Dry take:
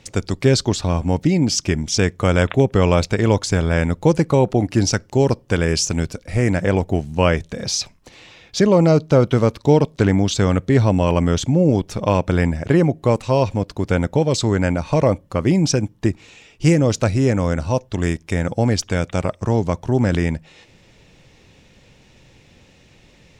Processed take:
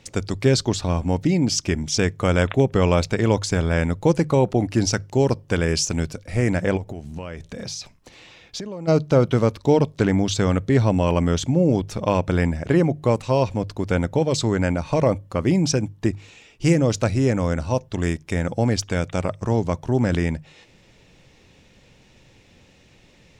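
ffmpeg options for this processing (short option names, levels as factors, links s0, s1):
-filter_complex "[0:a]asplit=3[s0][s1][s2];[s0]afade=t=out:st=6.76:d=0.02[s3];[s1]acompressor=threshold=0.0562:ratio=20:attack=3.2:release=140:knee=1:detection=peak,afade=t=in:st=6.76:d=0.02,afade=t=out:st=8.87:d=0.02[s4];[s2]afade=t=in:st=8.87:d=0.02[s5];[s3][s4][s5]amix=inputs=3:normalize=0,bandreject=f=50:t=h:w=6,bandreject=f=100:t=h:w=6,bandreject=f=150:t=h:w=6,volume=0.75"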